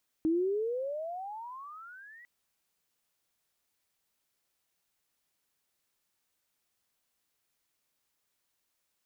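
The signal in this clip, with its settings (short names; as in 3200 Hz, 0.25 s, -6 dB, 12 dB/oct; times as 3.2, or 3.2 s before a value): gliding synth tone sine, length 2.00 s, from 312 Hz, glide +32 st, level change -26 dB, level -24 dB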